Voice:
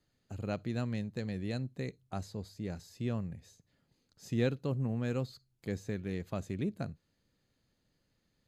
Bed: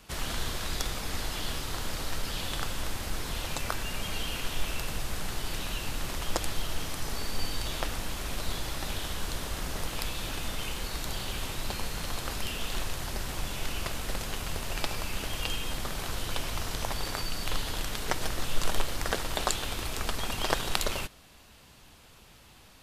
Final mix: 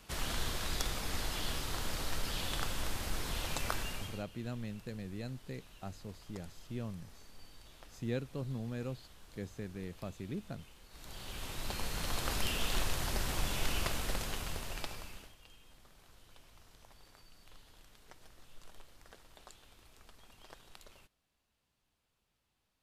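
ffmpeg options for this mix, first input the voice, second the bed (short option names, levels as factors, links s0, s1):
-filter_complex "[0:a]adelay=3700,volume=0.501[s0];[1:a]volume=9.44,afade=t=out:st=3.78:d=0.46:silence=0.1,afade=t=in:st=10.89:d=1.47:silence=0.0707946,afade=t=out:st=13.76:d=1.59:silence=0.0473151[s1];[s0][s1]amix=inputs=2:normalize=0"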